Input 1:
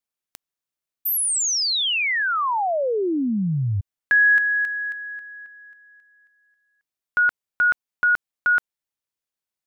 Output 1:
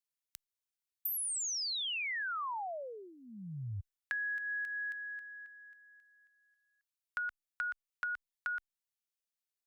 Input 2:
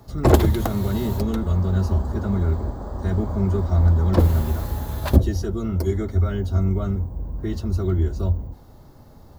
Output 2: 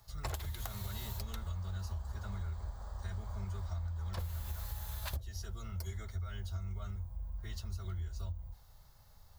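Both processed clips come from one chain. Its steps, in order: passive tone stack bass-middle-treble 10-0-10; compressor 12:1, threshold -31 dBFS; gain -4 dB

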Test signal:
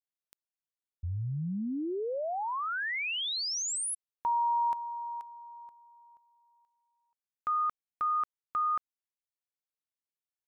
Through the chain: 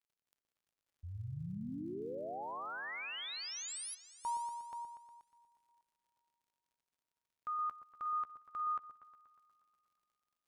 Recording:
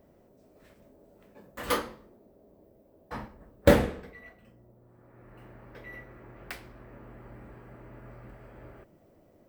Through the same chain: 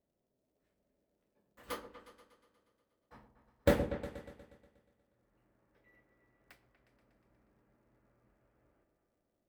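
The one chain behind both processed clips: crackle 100/s -52 dBFS; repeats that get brighter 0.12 s, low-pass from 750 Hz, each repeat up 2 oct, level -6 dB; upward expander 1.5:1, over -46 dBFS; gain -8 dB

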